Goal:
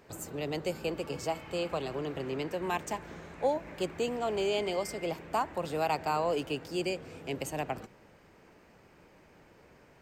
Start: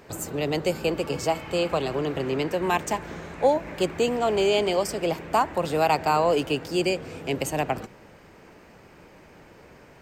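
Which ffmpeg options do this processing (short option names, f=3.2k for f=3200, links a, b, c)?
-filter_complex "[0:a]asettb=1/sr,asplit=3[a][b][c];[a]atrim=end=4.604[d];[b]atrim=start=4.6:end=5.11,asetpts=PTS-STARTPTS,afade=t=in:d=0.004:c=qsin,afade=t=out:st=0.506:d=0.004:c=qsin,aeval=exprs='val(0)+0.0112*sin(2*PI*2100*n/s)':c=same[e];[c]atrim=start=5.106[f];[d][e]acrossfade=d=0.004:c1=hsin:c2=qsin[g];[g][f]acrossfade=d=0.004:c1=qsin:c2=hsin,volume=-8.5dB"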